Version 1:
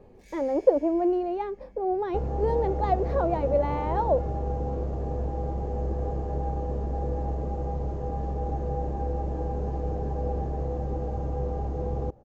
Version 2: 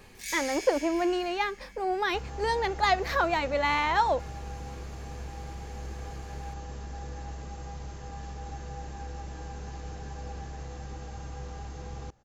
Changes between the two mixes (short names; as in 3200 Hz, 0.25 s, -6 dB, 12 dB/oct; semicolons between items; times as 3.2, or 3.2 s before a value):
second sound -9.5 dB; master: remove EQ curve 180 Hz 0 dB, 560 Hz +6 dB, 1600 Hz -16 dB, 9600 Hz -26 dB